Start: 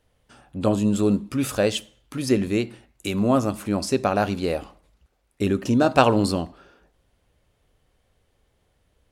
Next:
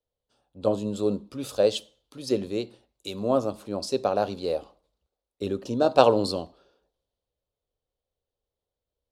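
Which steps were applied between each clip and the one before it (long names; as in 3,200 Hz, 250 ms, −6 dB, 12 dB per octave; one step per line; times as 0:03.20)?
octave-band graphic EQ 500/1,000/2,000/4,000 Hz +11/+4/−7/+11 dB
multiband upward and downward expander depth 40%
level −11 dB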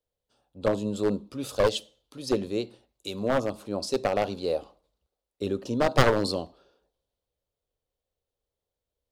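wavefolder on the positive side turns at −18 dBFS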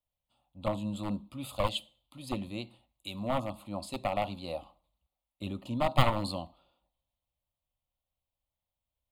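phaser with its sweep stopped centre 1,600 Hz, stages 6
level −1 dB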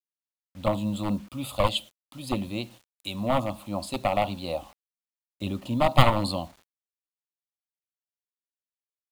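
bit-depth reduction 10 bits, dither none
level +6.5 dB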